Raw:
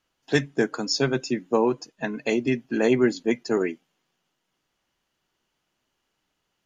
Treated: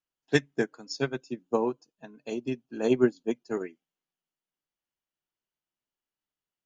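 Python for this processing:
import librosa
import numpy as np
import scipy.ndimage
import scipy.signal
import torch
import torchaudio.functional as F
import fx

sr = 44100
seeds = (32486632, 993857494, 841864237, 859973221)

y = fx.peak_eq(x, sr, hz=2000.0, db=-13.5, octaves=0.37, at=(1.2, 3.49))
y = fx.upward_expand(y, sr, threshold_db=-29.0, expansion=2.5)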